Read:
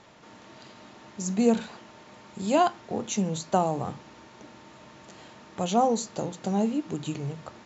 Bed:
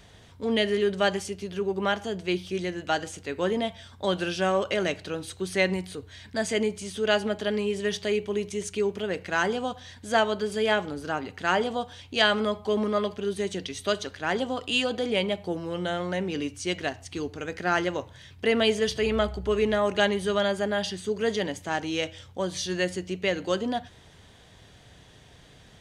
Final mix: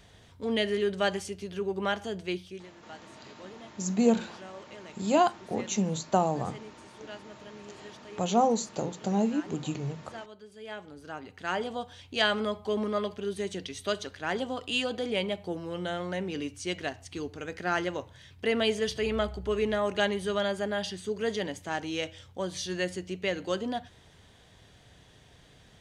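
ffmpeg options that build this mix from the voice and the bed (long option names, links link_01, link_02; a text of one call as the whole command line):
ffmpeg -i stem1.wav -i stem2.wav -filter_complex "[0:a]adelay=2600,volume=-1dB[link_01];[1:a]volume=13.5dB,afade=type=out:start_time=2.2:duration=0.48:silence=0.133352,afade=type=in:start_time=10.57:duration=1.47:silence=0.141254[link_02];[link_01][link_02]amix=inputs=2:normalize=0" out.wav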